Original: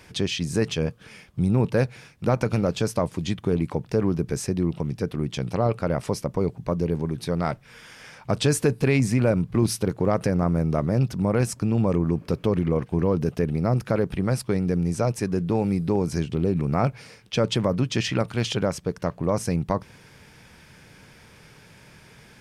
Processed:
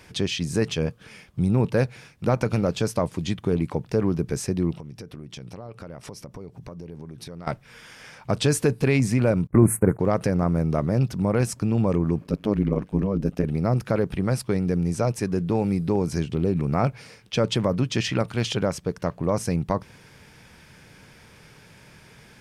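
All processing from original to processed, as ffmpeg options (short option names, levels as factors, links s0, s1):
-filter_complex "[0:a]asettb=1/sr,asplit=3[s0][s1][s2];[s0]atrim=end=4.744[s3];[s1]atrim=start=4.74:end=7.47,asetpts=PTS-STARTPTS,afade=t=in:d=0.004:c=qsin,afade=t=out:st=2.726:d=0.004:c=qsin,equalizer=f=5600:w=8:g=5,acompressor=threshold=0.0178:ratio=8:attack=3.2:release=140:knee=1:detection=peak[s4];[s2]atrim=start=7.466[s5];[s3][s4]acrossfade=d=0.004:c1=hsin:c2=qsin[s6];[s6][s5]acrossfade=d=0.004:c1=qsin:c2=hsin,asettb=1/sr,asplit=3[s7][s8][s9];[s7]atrim=end=9.474[s10];[s8]atrim=start=9.47:end=9.99,asetpts=PTS-STARTPTS,afade=t=in:d=0.004:c=qsin,afade=t=out:st=0.516:d=0.004:c=qsin,agate=range=0.0355:threshold=0.01:ratio=16:release=100:detection=peak,acontrast=46,asuperstop=centerf=4200:order=8:qfactor=0.71[s11];[s9]atrim=start=9.986[s12];[s10][s11]acrossfade=d=0.004:c1=hsin:c2=qsin[s13];[s13][s12]acrossfade=d=0.004:c1=qsin:c2=hsin,asettb=1/sr,asplit=3[s14][s15][s16];[s14]atrim=end=12.244[s17];[s15]atrim=start=12.24:end=13.44,asetpts=PTS-STARTPTS,afade=t=in:d=0.004:c=qsin,afade=t=out:st=1.196:d=0.004:c=qsin,lowshelf=f=130:t=q:w=3:g=-9.5,tremolo=f=100:d=0.889[s18];[s16]atrim=start=13.436[s19];[s17][s18]acrossfade=d=0.004:c1=hsin:c2=qsin[s20];[s20][s19]acrossfade=d=0.004:c1=qsin:c2=hsin"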